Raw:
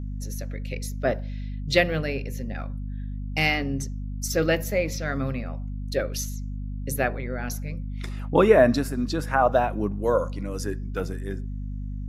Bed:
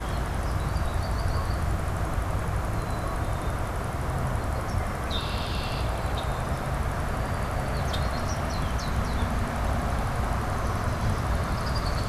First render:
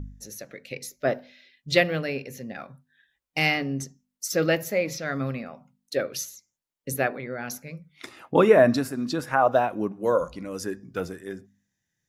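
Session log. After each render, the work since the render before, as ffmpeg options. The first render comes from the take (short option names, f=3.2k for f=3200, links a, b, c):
-af "bandreject=f=50:t=h:w=4,bandreject=f=100:t=h:w=4,bandreject=f=150:t=h:w=4,bandreject=f=200:t=h:w=4,bandreject=f=250:t=h:w=4"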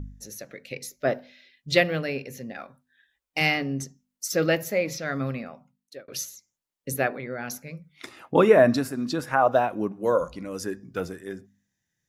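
-filter_complex "[0:a]asettb=1/sr,asplit=3[a][b][c];[a]atrim=end=2.504[d];[b]atrim=start=2.5:end=3.41,asetpts=PTS-STARTPTS,afade=t=in:d=0.004:c=qsin,afade=t=out:st=0.906:d=0.004:c=qsin,equalizer=f=140:t=o:w=0.75:g=-11.5[e];[c]atrim=start=3.406[f];[d][e]acrossfade=d=0.004:c1=hsin:c2=qsin[g];[g][f]acrossfade=d=0.004:c1=qsin:c2=hsin,asplit=2[h][i];[h]atrim=end=6.08,asetpts=PTS-STARTPTS,afade=t=out:st=5.45:d=0.63[j];[i]atrim=start=6.08,asetpts=PTS-STARTPTS,afade=t=in:d=0.004:c=hsin[k];[j][k]concat=n=2:v=0:a=1"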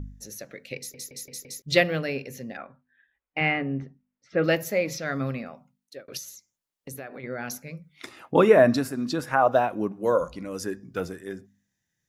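-filter_complex "[0:a]asettb=1/sr,asplit=3[a][b][c];[a]atrim=end=2.574[d];[b]atrim=start=2.57:end=4.44,asetpts=PTS-STARTPTS,afade=t=in:d=0.004:c=qsin,afade=t=out:st=1.866:d=0.004:c=qsin,lowpass=f=2.5k:w=0.5412,lowpass=f=2.5k:w=1.3066[e];[c]atrim=start=4.436[f];[d][e]acrossfade=d=0.004:c1=hsin:c2=qsin[g];[g][f]acrossfade=d=0.004:c1=qsin:c2=hsin,asettb=1/sr,asplit=3[h][i][j];[h]atrim=end=6.174[k];[i]atrim=start=6.17:end=7.24,asetpts=PTS-STARTPTS,afade=t=in:d=0.004:c=qsin,afade=t=out:st=1.066:d=0.004:c=qsin,acompressor=threshold=-35dB:ratio=6:attack=3.2:release=140:knee=1:detection=peak[l];[j]atrim=start=7.236[m];[k][l]acrossfade=d=0.004:c1=hsin:c2=qsin[n];[n][m]acrossfade=d=0.004:c1=qsin:c2=hsin,asplit=6[o][p][q][r][s][t];[o]atrim=end=0.942[u];[p]atrim=start=0.768:end=0.942[v];[q]atrim=start=0.768:end=0.942[w];[r]atrim=start=0.768:end=0.942[x];[s]atrim=start=0.768:end=0.942[y];[t]atrim=start=1.618[z];[u][v]acrossfade=d=0.004:c1=hsin:c2=hsin[aa];[aa][w]acrossfade=d=0.004:c1=hsin:c2=hsin[ab];[ab][x]acrossfade=d=0.004:c1=hsin:c2=hsin[ac];[ac][y]acrossfade=d=0.004:c1=hsin:c2=hsin[ad];[ad][z]acrossfade=d=0.004:c1=hsin:c2=hsin"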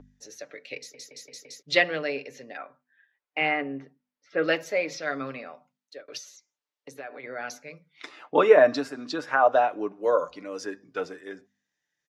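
-filter_complex "[0:a]acrossover=split=310 6400:gain=0.1 1 0.0631[a][b][c];[a][b][c]amix=inputs=3:normalize=0,aecho=1:1:6.8:0.43"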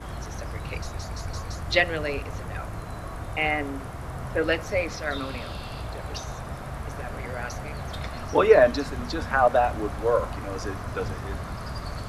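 -filter_complex "[1:a]volume=-6.5dB[a];[0:a][a]amix=inputs=2:normalize=0"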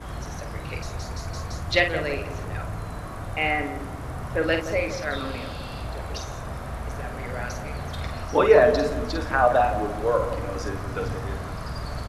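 -filter_complex "[0:a]asplit=2[a][b];[b]adelay=49,volume=-7dB[c];[a][c]amix=inputs=2:normalize=0,asplit=2[d][e];[e]adelay=172,lowpass=f=850:p=1,volume=-8dB,asplit=2[f][g];[g]adelay=172,lowpass=f=850:p=1,volume=0.51,asplit=2[h][i];[i]adelay=172,lowpass=f=850:p=1,volume=0.51,asplit=2[j][k];[k]adelay=172,lowpass=f=850:p=1,volume=0.51,asplit=2[l][m];[m]adelay=172,lowpass=f=850:p=1,volume=0.51,asplit=2[n][o];[o]adelay=172,lowpass=f=850:p=1,volume=0.51[p];[f][h][j][l][n][p]amix=inputs=6:normalize=0[q];[d][q]amix=inputs=2:normalize=0"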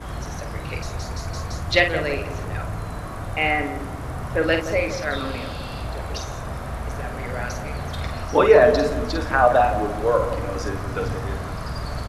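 -af "volume=3dB,alimiter=limit=-3dB:level=0:latency=1"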